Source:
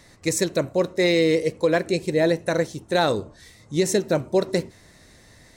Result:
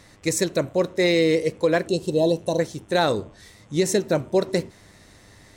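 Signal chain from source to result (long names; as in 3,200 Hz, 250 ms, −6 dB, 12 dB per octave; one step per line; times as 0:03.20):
gain on a spectral selection 0:01.88–0:02.60, 1,100–2,600 Hz −29 dB
hum with harmonics 100 Hz, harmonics 36, −58 dBFS −4 dB per octave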